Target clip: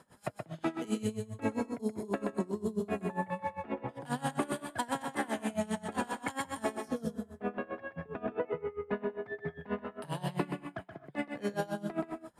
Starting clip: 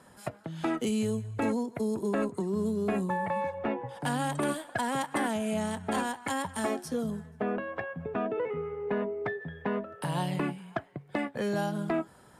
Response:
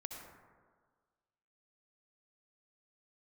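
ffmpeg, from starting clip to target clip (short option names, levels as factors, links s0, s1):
-filter_complex "[0:a]asplit=2[s0][s1];[1:a]atrim=start_sample=2205,atrim=end_sample=6615,adelay=126[s2];[s1][s2]afir=irnorm=-1:irlink=0,volume=0.891[s3];[s0][s3]amix=inputs=2:normalize=0,aeval=exprs='val(0)*pow(10,-22*(0.5-0.5*cos(2*PI*7.5*n/s))/20)':c=same"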